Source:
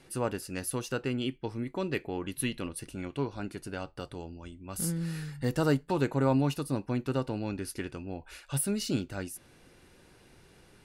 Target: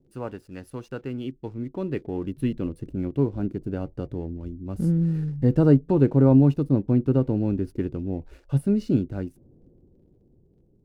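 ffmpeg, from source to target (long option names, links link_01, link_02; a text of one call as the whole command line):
ffmpeg -i in.wav -filter_complex "[0:a]lowpass=frequency=1500:poles=1,acrossover=split=490[link_01][link_02];[link_01]dynaudnorm=framelen=400:gausssize=11:maxgain=13.5dB[link_03];[link_02]aeval=exprs='sgn(val(0))*max(abs(val(0))-0.00119,0)':channel_layout=same[link_04];[link_03][link_04]amix=inputs=2:normalize=0,volume=-1.5dB" out.wav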